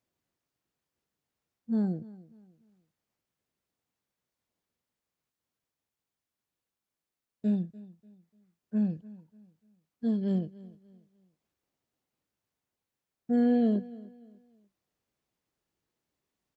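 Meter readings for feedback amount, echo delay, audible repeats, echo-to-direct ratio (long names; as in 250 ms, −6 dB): 33%, 295 ms, 2, −19.5 dB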